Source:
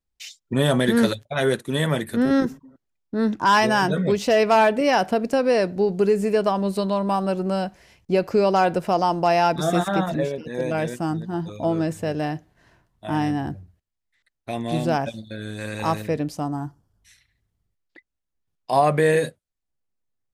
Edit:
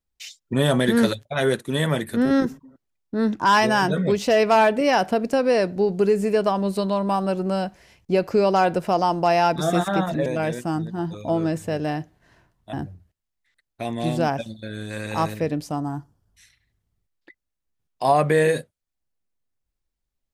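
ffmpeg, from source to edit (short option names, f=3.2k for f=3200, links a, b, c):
-filter_complex "[0:a]asplit=3[a][b][c];[a]atrim=end=10.262[d];[b]atrim=start=10.608:end=13.082[e];[c]atrim=start=13.408[f];[d][e]acrossfade=d=0.004:c1=hsin:c2=hsin[g];[g][f]acrossfade=d=0.004:c1=hsin:c2=hsin"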